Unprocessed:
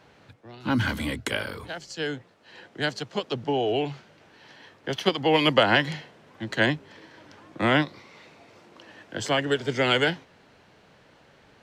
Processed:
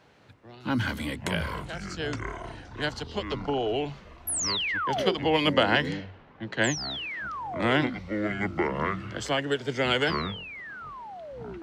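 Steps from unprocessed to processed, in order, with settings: 4.27–5.15 s: painted sound fall 340–12000 Hz -26 dBFS; ever faster or slower copies 236 ms, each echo -7 st, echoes 3, each echo -6 dB; 5.30–6.65 s: level-controlled noise filter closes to 2.5 kHz, open at -16.5 dBFS; trim -3 dB

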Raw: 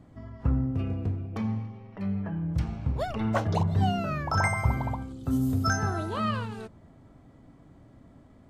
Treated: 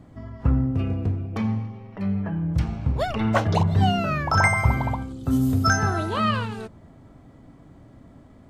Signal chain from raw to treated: dynamic bell 2.6 kHz, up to +4 dB, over -45 dBFS, Q 0.74; trim +5 dB

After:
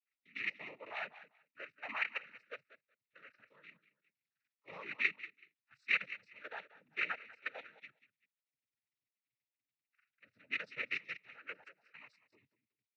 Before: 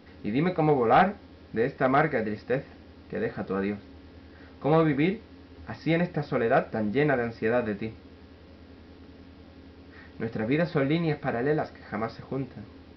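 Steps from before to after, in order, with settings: expander on every frequency bin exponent 2; feedback delay 190 ms, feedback 19%, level -13.5 dB; level held to a coarse grid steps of 15 dB; band-pass filter 2.2 kHz, Q 11; noise-vocoded speech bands 12; trim +13.5 dB

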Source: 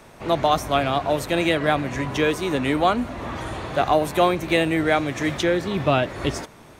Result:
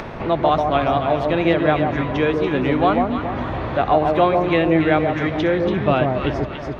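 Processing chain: distance through air 290 m; echo whose repeats swap between lows and highs 142 ms, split 980 Hz, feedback 59%, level -2.5 dB; upward compressor, threshold -22 dBFS; trim +2.5 dB

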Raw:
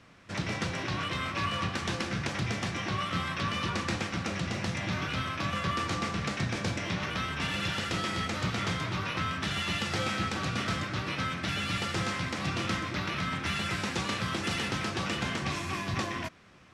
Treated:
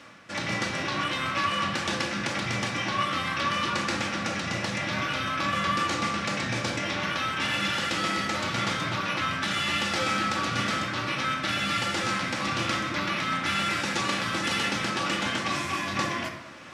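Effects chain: high-pass 380 Hz 6 dB/octave; reverse; upward compressor, threshold -42 dBFS; reverse; reverberation RT60 0.80 s, pre-delay 3 ms, DRR 2 dB; trim +3.5 dB

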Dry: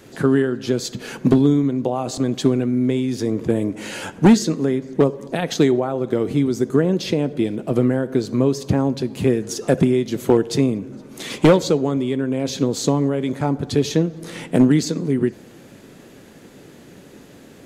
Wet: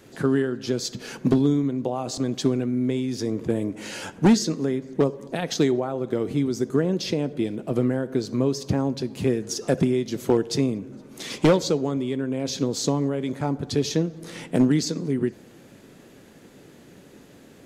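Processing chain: dynamic bell 5.3 kHz, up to +6 dB, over -47 dBFS, Q 2.1; trim -5 dB

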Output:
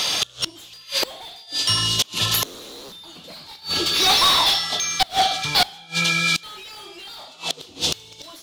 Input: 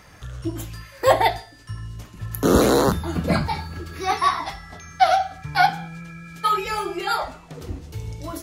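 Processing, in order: high-pass 160 Hz 6 dB/octave; resonant high shelf 2.5 kHz +11.5 dB, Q 3; level rider gain up to 3 dB; overdrive pedal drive 31 dB, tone 3.2 kHz, clips at -1 dBFS; 3.56–5.63 s: feedback comb 590 Hz, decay 0.36 s, mix 50%; inverted gate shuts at -9 dBFS, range -28 dB

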